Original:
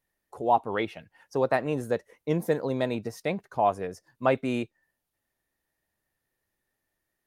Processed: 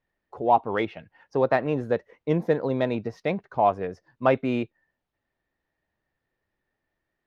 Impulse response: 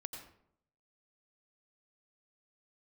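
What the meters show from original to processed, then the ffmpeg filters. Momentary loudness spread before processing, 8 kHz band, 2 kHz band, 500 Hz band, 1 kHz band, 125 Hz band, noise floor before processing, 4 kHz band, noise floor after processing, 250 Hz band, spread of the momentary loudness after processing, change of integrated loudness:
9 LU, under -10 dB, +2.0 dB, +3.0 dB, +3.0 dB, +3.0 dB, -83 dBFS, -0.5 dB, -83 dBFS, +3.0 dB, 8 LU, +3.0 dB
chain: -af "adynamicsmooth=sensitivity=3:basefreq=5000,equalizer=f=8900:t=o:w=0.93:g=-14,volume=1.41"

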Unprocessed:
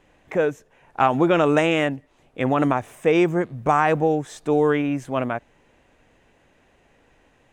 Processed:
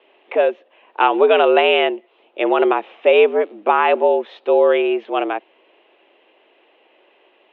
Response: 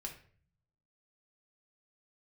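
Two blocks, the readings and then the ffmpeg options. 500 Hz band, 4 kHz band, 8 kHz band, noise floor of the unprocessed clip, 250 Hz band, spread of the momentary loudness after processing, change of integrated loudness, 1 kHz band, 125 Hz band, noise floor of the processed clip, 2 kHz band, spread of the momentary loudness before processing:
+6.5 dB, +9.5 dB, under -25 dB, -60 dBFS, -3.0 dB, 9 LU, +5.0 dB, +4.5 dB, under -30 dB, -57 dBFS, +4.5 dB, 9 LU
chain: -af "aexciter=amount=3.9:drive=7.5:freq=2500,highpass=f=260:t=q:w=0.5412,highpass=f=260:t=q:w=1.307,lowpass=f=3200:t=q:w=0.5176,lowpass=f=3200:t=q:w=0.7071,lowpass=f=3200:t=q:w=1.932,afreqshift=89,aemphasis=mode=reproduction:type=riaa,volume=1.41"

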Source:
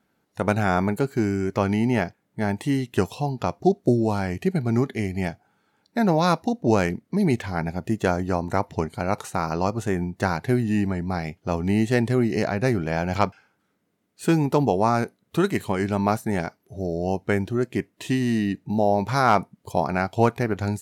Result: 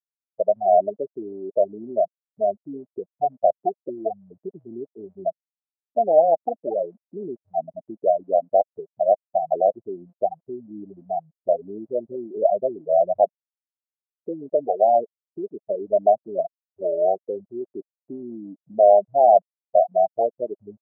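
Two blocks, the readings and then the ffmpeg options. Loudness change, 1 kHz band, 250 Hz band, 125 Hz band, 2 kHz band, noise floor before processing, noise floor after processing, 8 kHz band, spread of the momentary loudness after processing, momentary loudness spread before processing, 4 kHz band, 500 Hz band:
+1.5 dB, +3.0 dB, -14.5 dB, under -25 dB, under -40 dB, -72 dBFS, under -85 dBFS, under -40 dB, 19 LU, 8 LU, under -40 dB, +5.5 dB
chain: -af "asuperstop=centerf=1600:order=12:qfactor=0.67,afftfilt=real='re*gte(hypot(re,im),0.0631)':imag='im*gte(hypot(re,im),0.0631)':win_size=1024:overlap=0.75,alimiter=limit=0.15:level=0:latency=1:release=381,afftfilt=real='re*gte(hypot(re,im),0.178)':imag='im*gte(hypot(re,im),0.178)':win_size=1024:overlap=0.75,highpass=f=630:t=q:w=4.9,volume=1.33"

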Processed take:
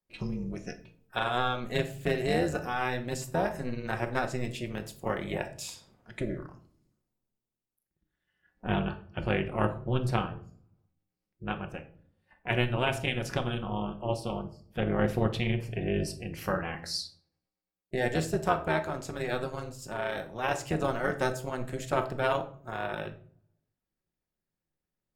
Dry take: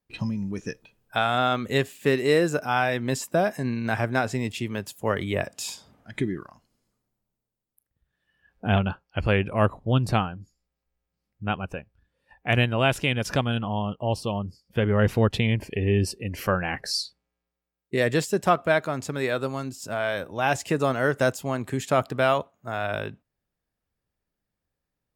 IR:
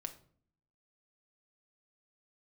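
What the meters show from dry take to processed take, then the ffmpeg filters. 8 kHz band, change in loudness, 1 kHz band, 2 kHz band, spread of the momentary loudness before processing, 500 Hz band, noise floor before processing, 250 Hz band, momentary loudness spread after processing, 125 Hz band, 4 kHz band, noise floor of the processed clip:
-6.5 dB, -6.5 dB, -5.5 dB, -6.5 dB, 11 LU, -6.5 dB, -85 dBFS, -6.0 dB, 10 LU, -6.5 dB, -6.5 dB, under -85 dBFS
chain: -filter_complex "[0:a]tremolo=f=250:d=0.857[s0];[1:a]atrim=start_sample=2205[s1];[s0][s1]afir=irnorm=-1:irlink=0"

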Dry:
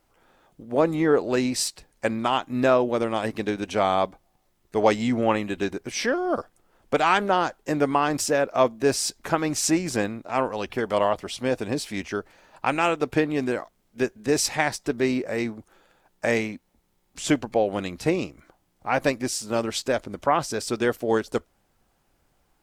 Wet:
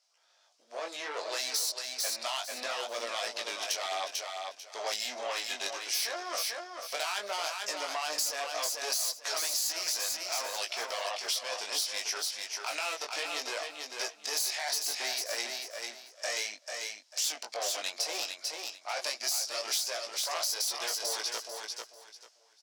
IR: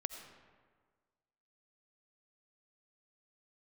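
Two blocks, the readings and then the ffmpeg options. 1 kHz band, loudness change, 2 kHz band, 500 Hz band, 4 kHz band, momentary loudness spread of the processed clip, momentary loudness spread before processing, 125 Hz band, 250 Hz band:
-12.0 dB, -8.0 dB, -7.0 dB, -16.0 dB, +2.5 dB, 8 LU, 8 LU, under -40 dB, -30.0 dB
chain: -filter_complex "[0:a]lowpass=f=5300:t=q:w=3.4,alimiter=limit=0.158:level=0:latency=1:release=12,bandreject=f=800:w=14,aeval=exprs='(tanh(12.6*val(0)+0.45)-tanh(0.45))/12.6':c=same,highpass=460,flanger=delay=17:depth=4.6:speed=0.65,equalizer=f=660:t=o:w=0.61:g=11,dynaudnorm=f=290:g=5:m=2.51,aderivative,afftfilt=real='re*lt(hypot(re,im),0.126)':imag='im*lt(hypot(re,im),0.126)':win_size=1024:overlap=0.75,asplit=2[s0][s1];[s1]aecho=0:1:443|886|1329:0.501|0.115|0.0265[s2];[s0][s2]amix=inputs=2:normalize=0,acompressor=threshold=0.0178:ratio=4,volume=2"

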